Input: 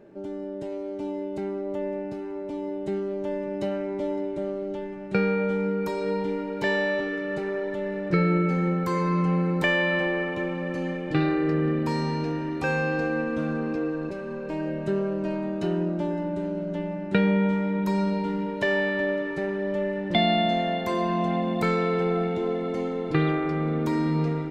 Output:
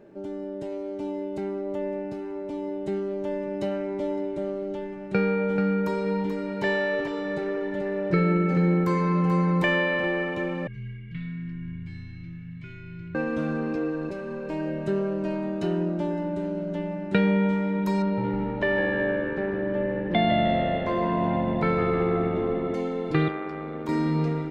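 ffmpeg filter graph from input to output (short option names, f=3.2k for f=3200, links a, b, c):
-filter_complex "[0:a]asettb=1/sr,asplit=3[a][b][c];[a]atrim=end=5.124[d];[b]atrim=start=5.12:end=10.04,asetpts=PTS-STARTPTS,afade=t=in:d=0.004:c=qsin,afade=t=out:st=4.916:d=0.004:c=qsin,highshelf=f=3.9k:g=-5.5,aecho=1:1:435:0.501,atrim=end_sample=216972[e];[c]atrim=start=10.036[f];[d][e]acrossfade=d=0.004:c1=hsin:c2=qsin[g];[g][f]acrossfade=d=0.004:c1=qsin:c2=hsin,asettb=1/sr,asplit=3[h][i][j];[h]atrim=end=10.674[k];[i]atrim=start=10.67:end=13.15,asetpts=PTS-STARTPTS,afade=t=in:d=0.004:c=qsin,afade=t=out:st=2.476:d=0.004:c=qsin,aeval=exprs='clip(val(0),-1,0.126)':c=same,asplit=3[l][m][n];[l]bandpass=f=270:t=q:w=8,volume=0dB[o];[m]bandpass=f=2.29k:t=q:w=8,volume=-6dB[p];[n]bandpass=f=3.01k:t=q:w=8,volume=-9dB[q];[o][p][q]amix=inputs=3:normalize=0,afreqshift=-140[r];[j]atrim=start=13.146[s];[k][r]acrossfade=d=0.004:c1=hsin:c2=qsin[t];[t][s]acrossfade=d=0.004:c1=qsin:c2=hsin,asettb=1/sr,asplit=3[u][v][w];[u]atrim=end=18.024[x];[v]atrim=start=18.02:end=22.74,asetpts=PTS-STARTPTS,afade=t=in:d=0.004:c=qsin,afade=t=out:st=4.716:d=0.004:c=qsin,lowpass=2.6k,asplit=6[y][z][aa][ab][ac][ad];[z]adelay=153,afreqshift=-75,volume=-9dB[ae];[aa]adelay=306,afreqshift=-150,volume=-15.9dB[af];[ab]adelay=459,afreqshift=-225,volume=-22.9dB[ag];[ac]adelay=612,afreqshift=-300,volume=-29.8dB[ah];[ad]adelay=765,afreqshift=-375,volume=-36.7dB[ai];[y][ae][af][ag][ah][ai]amix=inputs=6:normalize=0,atrim=end_sample=208152[aj];[w]atrim=start=22.736[ak];[x][aj]acrossfade=d=0.004:c1=hsin:c2=qsin[al];[al][ak]acrossfade=d=0.004:c1=qsin:c2=hsin,asettb=1/sr,asplit=3[am][an][ao];[am]atrim=end=23.284[ap];[an]atrim=start=23.28:end=23.89,asetpts=PTS-STARTPTS,afade=t=in:d=0.004:c=qsin,afade=t=out:st=0.606:d=0.004:c=qsin,highpass=f=470:p=1,highshelf=f=3.5k:g=-7.5,tremolo=f=97:d=0.519[aq];[ao]atrim=start=23.886[ar];[ap][aq]acrossfade=d=0.004:c1=hsin:c2=qsin[as];[as][ar]acrossfade=d=0.004:c1=qsin:c2=hsin"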